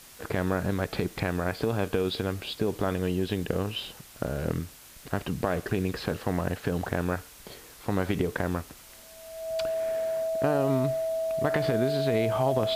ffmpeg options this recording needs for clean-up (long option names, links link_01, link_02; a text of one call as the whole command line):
ffmpeg -i in.wav -af "adeclick=threshold=4,bandreject=frequency=650:width=30,afftdn=noise_reduction=25:noise_floor=-49" out.wav